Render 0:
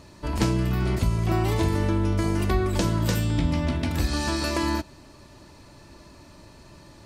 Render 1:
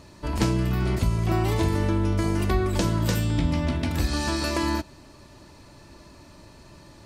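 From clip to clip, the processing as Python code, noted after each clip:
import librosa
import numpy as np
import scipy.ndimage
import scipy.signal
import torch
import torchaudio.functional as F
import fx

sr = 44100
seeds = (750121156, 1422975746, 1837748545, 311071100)

y = x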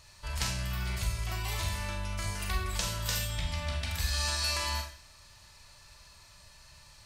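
y = fx.tone_stack(x, sr, knobs='10-0-10')
y = fx.rev_schroeder(y, sr, rt60_s=0.47, comb_ms=29, drr_db=2.5)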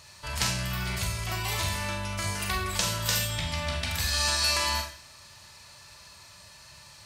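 y = scipy.signal.sosfilt(scipy.signal.butter(2, 96.0, 'highpass', fs=sr, output='sos'), x)
y = F.gain(torch.from_numpy(y), 6.0).numpy()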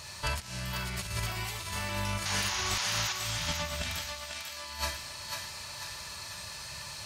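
y = fx.over_compress(x, sr, threshold_db=-35.0, ratio=-0.5)
y = fx.spec_paint(y, sr, seeds[0], shape='noise', start_s=2.25, length_s=0.88, low_hz=720.0, high_hz=7000.0, level_db=-34.0)
y = fx.echo_thinned(y, sr, ms=495, feedback_pct=51, hz=640.0, wet_db=-4.0)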